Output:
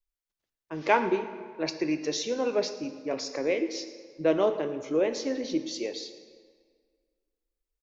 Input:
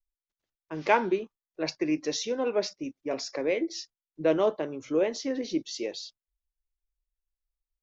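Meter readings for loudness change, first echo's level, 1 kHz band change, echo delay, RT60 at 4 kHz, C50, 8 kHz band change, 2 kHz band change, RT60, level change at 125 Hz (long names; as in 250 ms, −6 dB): 0.0 dB, −17.5 dB, +0.5 dB, 112 ms, 1.3 s, 10.5 dB, can't be measured, +0.5 dB, 1.9 s, 0.0 dB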